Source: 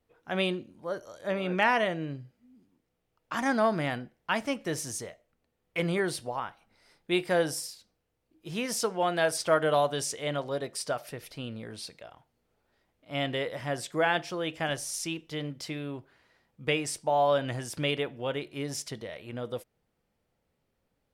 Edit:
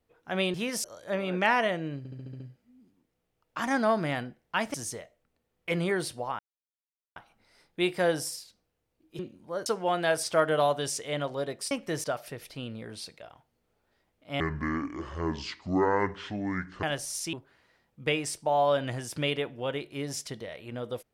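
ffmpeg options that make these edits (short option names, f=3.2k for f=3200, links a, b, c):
-filter_complex "[0:a]asplit=18[a][b][c][d][e][f][g][h][i][j][k][l][m][n][o][p][q][r];[a]atrim=end=0.542[s];[b]atrim=start=8.498:end=8.802[t];[c]atrim=start=1.008:end=2.222[u];[d]atrim=start=2.148:end=2.222[v];[e]atrim=start=2.148:end=2.222[w];[f]atrim=start=2.148:end=2.222[x];[g]atrim=start=2.148:end=2.222[y];[h]atrim=start=2.148:end=2.222[z];[i]atrim=start=2.148:end=4.492[aa];[j]atrim=start=4.818:end=6.47,asetpts=PTS-STARTPTS,afade=t=out:st=1.648:d=0.004:c=hsin,apad=pad_dur=0.77[ab];[k]atrim=start=6.47:end=8.502,asetpts=PTS-STARTPTS,afade=t=in:d=0.004:c=hsin[ac];[l]atrim=start=0.538:end=1.012[ad];[m]atrim=start=8.798:end=10.852[ae];[n]atrim=start=4.488:end=4.822[af];[o]atrim=start=10.848:end=13.214[ag];[p]atrim=start=13.21:end=14.62,asetpts=PTS-STARTPTS,asetrate=25578,aresample=44100[ah];[q]atrim=start=14.616:end=15.122[ai];[r]atrim=start=15.938[aj];[s][t]acrossfade=d=0.004:c1=hsin:c2=hsin[ak];[ak][u]acrossfade=d=0.004:c1=hsin:c2=hsin[al];[al][v]acrossfade=d=0.004:c1=hsin:c2=hsin[am];[am][w]acrossfade=d=0.004:c1=hsin:c2=hsin[an];[an][x]acrossfade=d=0.004:c1=hsin:c2=hsin[ao];[ao][y]acrossfade=d=0.004:c1=hsin:c2=hsin[ap];[ap][z]acrossfade=d=0.004:c1=hsin:c2=hsin[aq];[aq][aa]acrossfade=d=0.004:c1=hsin:c2=hsin[ar];[ab][ac]concat=n=2:v=0:a=1[as];[ar][as]acrossfade=d=0.004:c1=hsin:c2=hsin[at];[at][ad]acrossfade=d=0.004:c1=hsin:c2=hsin[au];[au][ae]acrossfade=d=0.004:c1=hsin:c2=hsin[av];[av][af]acrossfade=d=0.004:c1=hsin:c2=hsin[aw];[aw][ag]acrossfade=d=0.004:c1=hsin:c2=hsin[ax];[ax][ah]acrossfade=d=0.004:c1=hsin:c2=hsin[ay];[ay][ai]acrossfade=d=0.004:c1=hsin:c2=hsin[az];[az][aj]acrossfade=d=0.004:c1=hsin:c2=hsin"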